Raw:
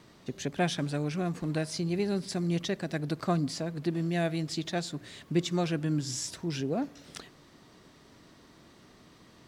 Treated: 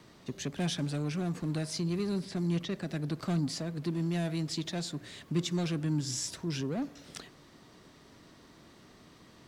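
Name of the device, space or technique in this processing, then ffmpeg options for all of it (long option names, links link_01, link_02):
one-band saturation: -filter_complex "[0:a]acrossover=split=280|3200[link_01][link_02][link_03];[link_02]asoftclip=type=tanh:threshold=-37dB[link_04];[link_01][link_04][link_03]amix=inputs=3:normalize=0,asettb=1/sr,asplit=3[link_05][link_06][link_07];[link_05]atrim=end=2.164[link_08];[link_06]atrim=start=2.16:end=3.18,asetpts=PTS-STARTPTS,afade=type=in:duration=0.004:curve=qsin,afade=type=out:start_time=1.016:duration=0.004:curve=qsin,acrossover=split=3700[link_09][link_10];[link_10]acompressor=threshold=-50dB:ratio=4:attack=1:release=60[link_11];[link_09][link_11]amix=inputs=2:normalize=0[link_12];[link_07]atrim=start=3.176[link_13];[link_08][link_12]acrossfade=duration=0.004:curve1=hsin:curve2=qsin[link_14];[link_14][link_13]acrossfade=duration=0.004:curve1=qsin:curve2=hsin"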